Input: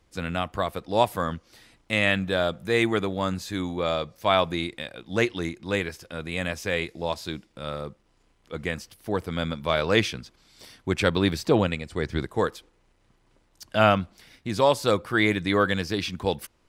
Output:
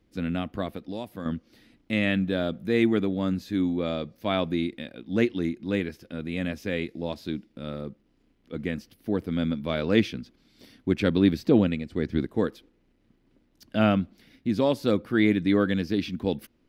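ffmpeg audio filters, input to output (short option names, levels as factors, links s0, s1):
-filter_complex "[0:a]equalizer=f=250:t=o:w=1:g=12,equalizer=f=1000:t=o:w=1:g=-7,equalizer=f=8000:t=o:w=1:g=-11,asettb=1/sr,asplit=3[s0][s1][s2];[s0]atrim=end=0.714[s3];[s1]atrim=start=0.71:end=1.26,asetpts=PTS-STARTPTS,afade=t=in:d=0.004:c=qsin,afade=t=out:st=0.546:d=0.004:c=qsin,acrossover=split=2000|5800[s4][s5][s6];[s4]acompressor=threshold=0.0355:ratio=4[s7];[s5]acompressor=threshold=0.00501:ratio=4[s8];[s6]acompressor=threshold=0.00178:ratio=4[s9];[s7][s8][s9]amix=inputs=3:normalize=0[s10];[s2]atrim=start=1.256[s11];[s3][s10]acrossfade=d=0.004:c1=hsin:c2=qsin[s12];[s12][s11]acrossfade=d=0.004:c1=qsin:c2=hsin,volume=0.631"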